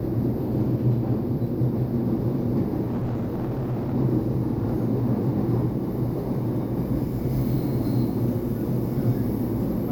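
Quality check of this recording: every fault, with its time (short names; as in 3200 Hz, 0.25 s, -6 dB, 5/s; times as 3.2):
2.86–3.94 clipped -23.5 dBFS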